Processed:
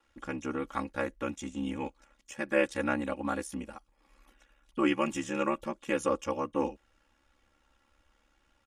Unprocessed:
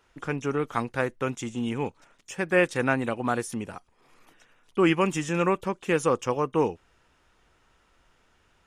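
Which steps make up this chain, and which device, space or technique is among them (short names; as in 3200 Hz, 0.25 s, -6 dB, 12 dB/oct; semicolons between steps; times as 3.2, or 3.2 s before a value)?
ring-modulated robot voice (ring modulator 35 Hz; comb 3.6 ms, depth 77%); gain -5 dB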